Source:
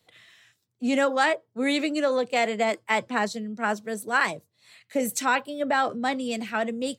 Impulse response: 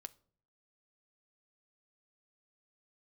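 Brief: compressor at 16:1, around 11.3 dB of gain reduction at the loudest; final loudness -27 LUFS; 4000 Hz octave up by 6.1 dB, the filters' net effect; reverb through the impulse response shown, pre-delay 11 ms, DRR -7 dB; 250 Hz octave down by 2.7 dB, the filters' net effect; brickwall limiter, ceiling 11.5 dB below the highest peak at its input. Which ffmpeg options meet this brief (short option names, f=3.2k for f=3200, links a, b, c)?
-filter_complex "[0:a]equalizer=f=250:t=o:g=-3,equalizer=f=4k:t=o:g=7.5,acompressor=threshold=-28dB:ratio=16,alimiter=level_in=3dB:limit=-24dB:level=0:latency=1,volume=-3dB,asplit=2[a][b];[1:a]atrim=start_sample=2205,adelay=11[c];[b][c]afir=irnorm=-1:irlink=0,volume=12.5dB[d];[a][d]amix=inputs=2:normalize=0,volume=2dB"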